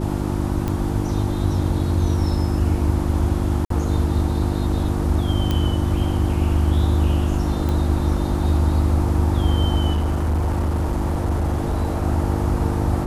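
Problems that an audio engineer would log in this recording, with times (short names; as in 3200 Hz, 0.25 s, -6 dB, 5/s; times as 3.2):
hum 50 Hz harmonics 7 -24 dBFS
0.68 pop -12 dBFS
3.65–3.7 gap 53 ms
5.51 pop -9 dBFS
7.69 pop -13 dBFS
9.92–12.04 clipped -17 dBFS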